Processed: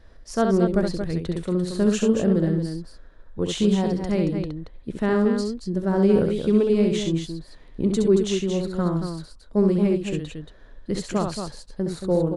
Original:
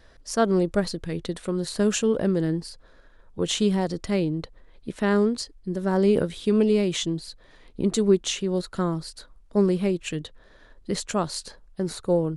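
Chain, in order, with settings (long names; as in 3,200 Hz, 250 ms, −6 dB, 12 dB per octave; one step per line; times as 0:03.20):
spectral tilt −1.5 dB per octave
on a send: loudspeakers that aren't time-aligned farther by 23 metres −5 dB, 78 metres −7 dB
on the sum: level −2 dB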